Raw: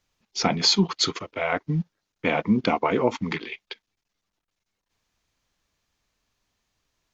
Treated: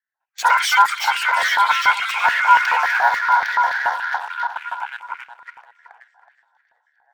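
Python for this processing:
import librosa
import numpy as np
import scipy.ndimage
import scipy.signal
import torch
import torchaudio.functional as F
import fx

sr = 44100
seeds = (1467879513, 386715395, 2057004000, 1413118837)

p1 = scipy.signal.sosfilt(scipy.signal.butter(4, 140.0, 'highpass', fs=sr, output='sos'), x)
p2 = fx.env_lowpass(p1, sr, base_hz=1700.0, full_db=-20.0)
p3 = fx.graphic_eq(p2, sr, hz=(250, 1000, 2000, 4000), db=(5, -6, -11, -8))
p4 = fx.echo_swing(p3, sr, ms=1076, ratio=3, feedback_pct=32, wet_db=-8.0)
p5 = fx.fuzz(p4, sr, gain_db=37.0, gate_db=-39.0)
p6 = p4 + (p5 * 10.0 ** (-4.0 / 20.0))
p7 = fx.env_phaser(p6, sr, low_hz=210.0, high_hz=1400.0, full_db=-15.5)
p8 = p7 * np.sin(2.0 * np.pi * 1200.0 * np.arange(len(p7)) / sr)
p9 = fx.echo_thinned(p8, sr, ms=371, feedback_pct=37, hz=420.0, wet_db=-13)
p10 = fx.filter_lfo_highpass(p9, sr, shape='square', hz=3.5, low_hz=850.0, high_hz=1900.0, q=2.6)
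p11 = fx.echo_pitch(p10, sr, ms=202, semitones=7, count=2, db_per_echo=-6.0)
y = p11 * 10.0 ** (-2.0 / 20.0)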